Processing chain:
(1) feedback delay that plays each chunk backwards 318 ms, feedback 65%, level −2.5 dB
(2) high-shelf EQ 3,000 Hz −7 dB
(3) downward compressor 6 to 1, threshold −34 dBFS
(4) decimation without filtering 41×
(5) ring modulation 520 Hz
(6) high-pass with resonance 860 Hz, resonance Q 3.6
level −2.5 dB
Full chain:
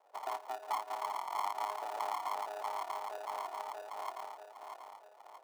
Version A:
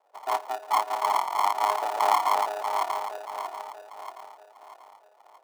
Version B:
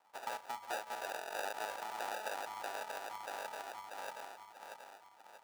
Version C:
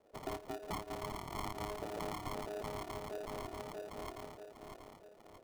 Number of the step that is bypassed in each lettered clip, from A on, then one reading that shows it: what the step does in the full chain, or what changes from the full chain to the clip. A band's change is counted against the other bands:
3, average gain reduction 7.0 dB
5, 1 kHz band −8.0 dB
6, 1 kHz band −8.5 dB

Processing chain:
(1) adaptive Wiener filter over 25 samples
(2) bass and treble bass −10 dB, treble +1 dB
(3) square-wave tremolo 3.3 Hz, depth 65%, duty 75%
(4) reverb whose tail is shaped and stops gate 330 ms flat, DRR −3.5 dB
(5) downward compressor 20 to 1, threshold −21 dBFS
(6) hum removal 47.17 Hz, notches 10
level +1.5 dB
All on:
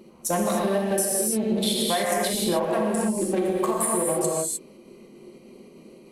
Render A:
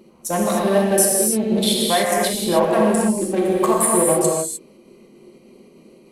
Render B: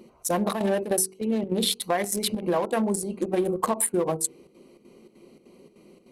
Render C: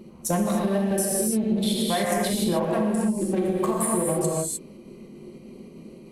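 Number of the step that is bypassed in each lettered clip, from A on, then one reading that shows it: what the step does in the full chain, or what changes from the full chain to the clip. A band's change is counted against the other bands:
5, average gain reduction 4.0 dB
4, change in momentary loudness spread +1 LU
2, 125 Hz band +6.0 dB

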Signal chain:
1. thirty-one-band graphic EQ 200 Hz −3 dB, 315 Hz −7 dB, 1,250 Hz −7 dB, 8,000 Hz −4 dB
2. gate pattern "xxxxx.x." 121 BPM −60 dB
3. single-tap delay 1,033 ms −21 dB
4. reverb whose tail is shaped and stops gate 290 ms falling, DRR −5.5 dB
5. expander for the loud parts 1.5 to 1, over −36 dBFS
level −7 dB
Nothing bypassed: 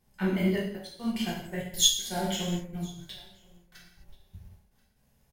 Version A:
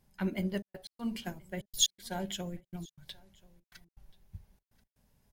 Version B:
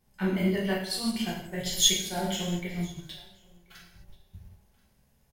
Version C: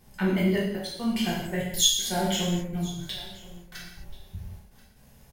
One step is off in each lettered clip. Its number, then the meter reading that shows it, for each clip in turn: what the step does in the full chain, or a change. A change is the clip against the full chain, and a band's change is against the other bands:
4, change in momentary loudness spread +8 LU
2, 2 kHz band +2.0 dB
5, change in crest factor −3.0 dB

